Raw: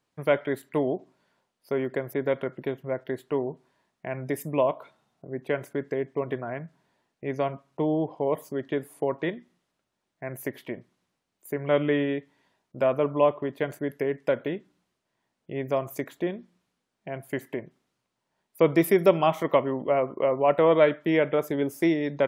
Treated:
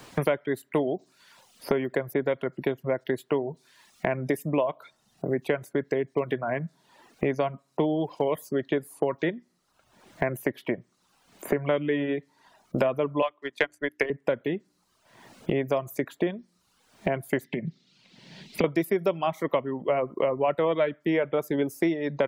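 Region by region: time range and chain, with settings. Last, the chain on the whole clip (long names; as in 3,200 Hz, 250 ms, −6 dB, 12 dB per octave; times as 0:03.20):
0:13.22–0:14.10: meter weighting curve ITU-R 468 + transient designer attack +9 dB, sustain −10 dB + mains-hum notches 60/120/180/240/300/360 Hz
0:17.44–0:18.64: drawn EQ curve 110 Hz 0 dB, 160 Hz +12 dB, 280 Hz +1 dB, 420 Hz −2 dB, 1,200 Hz −12 dB, 2,100 Hz +4 dB, 4,300 Hz +10 dB, 11,000 Hz −13 dB + downward compressor 4 to 1, threshold −33 dBFS
whole clip: reverb reduction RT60 0.57 s; multiband upward and downward compressor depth 100%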